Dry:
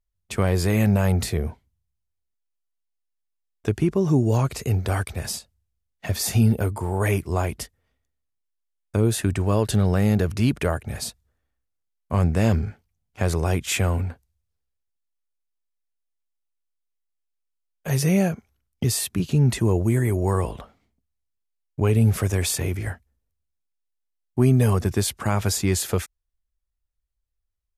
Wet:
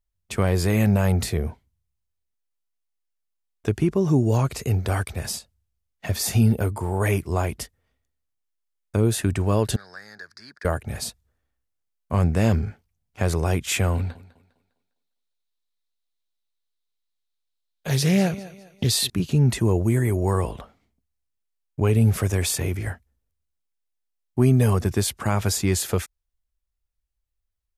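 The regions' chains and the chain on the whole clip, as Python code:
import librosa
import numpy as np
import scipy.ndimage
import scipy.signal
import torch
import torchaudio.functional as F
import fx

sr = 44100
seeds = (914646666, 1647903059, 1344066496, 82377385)

y = fx.chain(x, sr, fx.double_bandpass(hz=2800.0, octaves=1.5),
    fx.band_squash(depth_pct=40), at=(9.76, 10.65))
y = fx.chain(y, sr, fx.peak_eq(hz=3900.0, db=12.5, octaves=0.55),
    fx.echo_thinned(ms=202, feedback_pct=36, hz=160.0, wet_db=-16.0),
    fx.doppler_dist(depth_ms=0.15), at=(13.95, 19.1))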